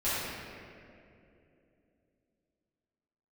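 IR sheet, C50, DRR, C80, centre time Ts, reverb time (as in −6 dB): −4.0 dB, −15.0 dB, −2.0 dB, 161 ms, 2.7 s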